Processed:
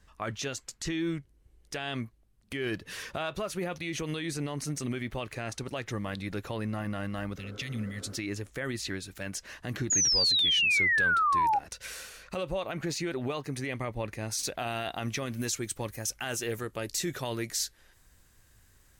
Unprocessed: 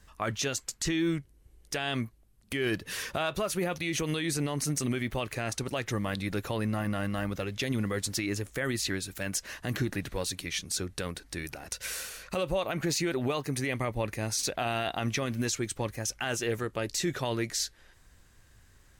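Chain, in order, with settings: 7.4–8.13 spectral repair 240–1700 Hz before; high shelf 9200 Hz -8.5 dB, from 14.31 s +3.5 dB, from 15.36 s +10.5 dB; 9.9–11.59 painted sound fall 790–7000 Hz -22 dBFS; gain -3 dB

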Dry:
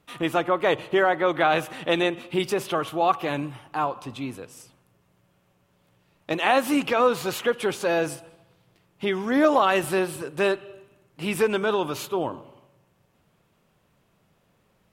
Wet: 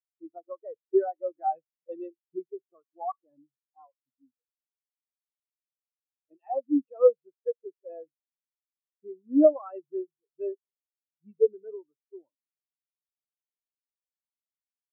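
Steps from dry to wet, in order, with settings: spectral expander 4:1; gain -2.5 dB

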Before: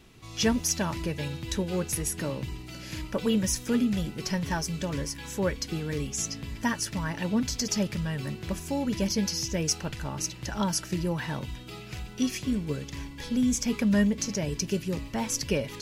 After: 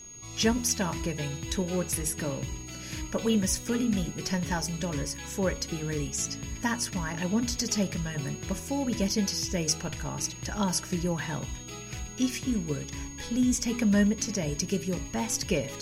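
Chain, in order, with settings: whine 6600 Hz -44 dBFS; de-hum 79.66 Hz, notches 18

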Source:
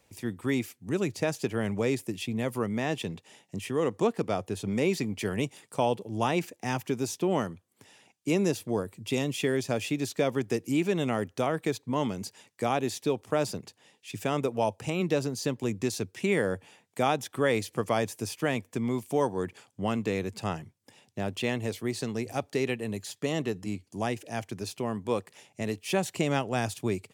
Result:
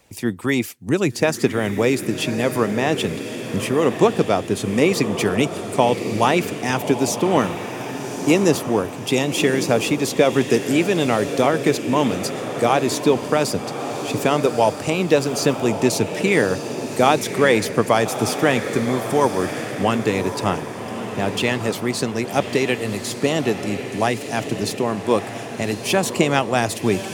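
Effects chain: harmonic-percussive split percussive +6 dB; diffused feedback echo 1.18 s, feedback 51%, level -8.5 dB; gain +6 dB

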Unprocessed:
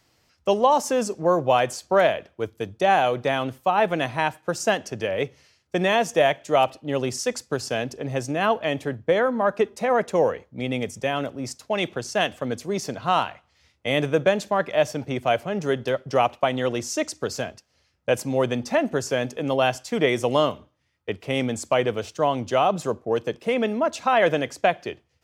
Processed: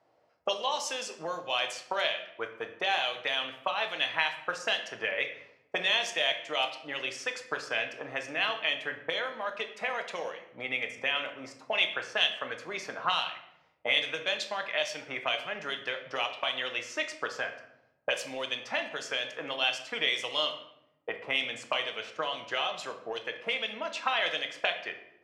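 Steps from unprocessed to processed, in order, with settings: auto-wah 640–3700 Hz, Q 2, up, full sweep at -18.5 dBFS; shoebox room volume 210 m³, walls mixed, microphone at 0.55 m; gain +4 dB

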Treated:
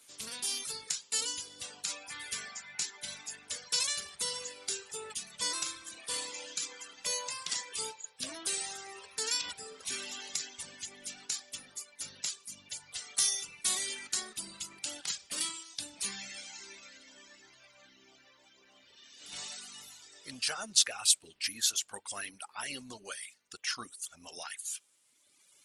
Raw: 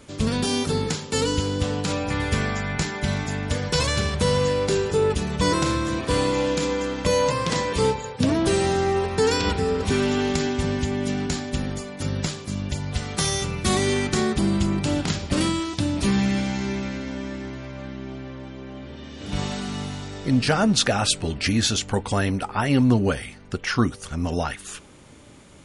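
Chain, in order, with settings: differentiator; reverb removal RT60 1.9 s; Opus 20 kbps 48000 Hz

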